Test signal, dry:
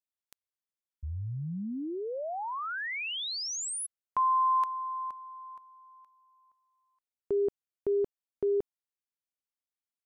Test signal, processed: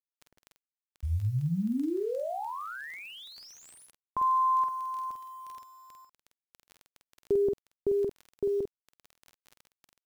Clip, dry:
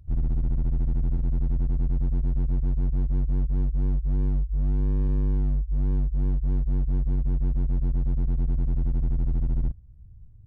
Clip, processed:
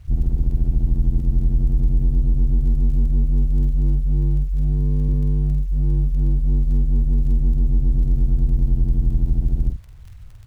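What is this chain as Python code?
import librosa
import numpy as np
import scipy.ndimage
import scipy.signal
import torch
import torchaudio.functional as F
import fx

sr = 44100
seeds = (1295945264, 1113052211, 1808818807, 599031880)

y = fx.lowpass(x, sr, hz=1000.0, slope=6)
y = fx.tilt_shelf(y, sr, db=5.5, hz=680.0)
y = fx.rider(y, sr, range_db=3, speed_s=2.0)
y = fx.dmg_crackle(y, sr, seeds[0], per_s=13.0, level_db=-36.0)
y = fx.quant_dither(y, sr, seeds[1], bits=10, dither='none')
y = fx.doubler(y, sr, ms=48.0, db=-5.0)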